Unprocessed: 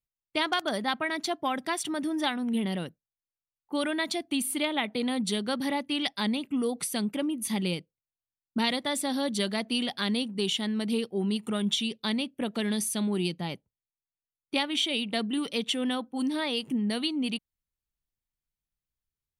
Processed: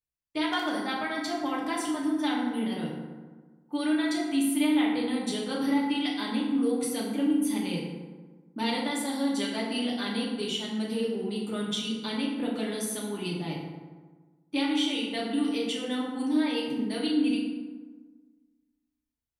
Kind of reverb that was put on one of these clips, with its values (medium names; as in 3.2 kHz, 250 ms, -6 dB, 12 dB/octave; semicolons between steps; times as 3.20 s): FDN reverb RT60 1.4 s, low-frequency decay 1.2×, high-frequency decay 0.5×, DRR -5 dB; trim -7.5 dB